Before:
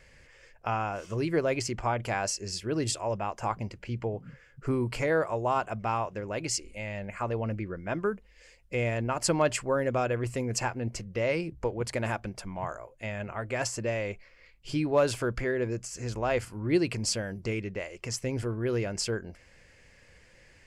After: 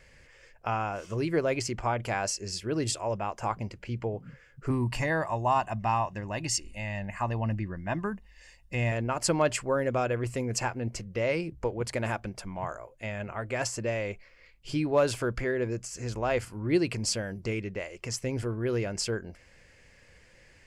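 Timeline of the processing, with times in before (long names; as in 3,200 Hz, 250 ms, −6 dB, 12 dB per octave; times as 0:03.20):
0:04.70–0:08.92: comb filter 1.1 ms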